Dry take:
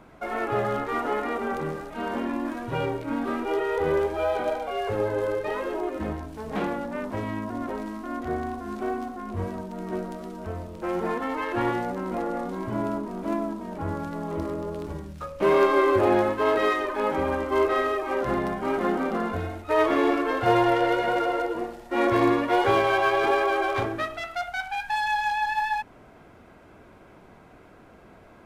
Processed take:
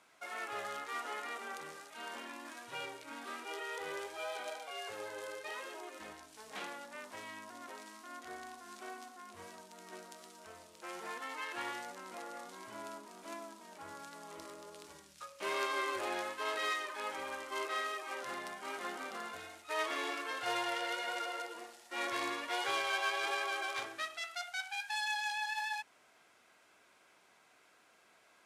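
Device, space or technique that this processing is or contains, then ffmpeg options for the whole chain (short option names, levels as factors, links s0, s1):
piezo pickup straight into a mixer: -af "lowpass=8500,aderivative,volume=1.5"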